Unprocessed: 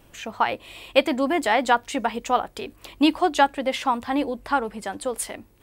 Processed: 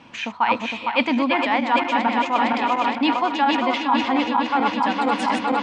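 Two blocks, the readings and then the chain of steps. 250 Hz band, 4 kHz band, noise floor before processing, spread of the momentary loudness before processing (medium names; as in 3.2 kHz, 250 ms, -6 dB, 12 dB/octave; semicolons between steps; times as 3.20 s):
+3.5 dB, +3.5 dB, -54 dBFS, 12 LU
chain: backward echo that repeats 230 ms, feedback 82%, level -5.5 dB; cabinet simulation 170–5300 Hz, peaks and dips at 240 Hz +8 dB, 380 Hz -9 dB, 600 Hz -5 dB, 960 Hz +8 dB, 2.4 kHz +6 dB; reverse; compression 6:1, threshold -25 dBFS, peak gain reduction 15 dB; reverse; trim +8 dB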